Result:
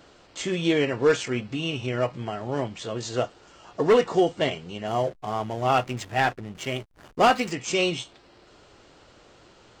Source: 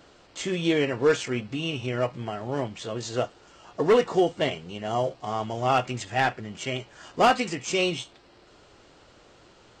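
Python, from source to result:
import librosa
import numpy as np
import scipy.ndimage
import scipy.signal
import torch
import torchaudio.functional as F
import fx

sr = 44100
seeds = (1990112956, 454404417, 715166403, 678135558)

y = fx.backlash(x, sr, play_db=-37.0, at=(4.87, 7.52))
y = y * 10.0 ** (1.0 / 20.0)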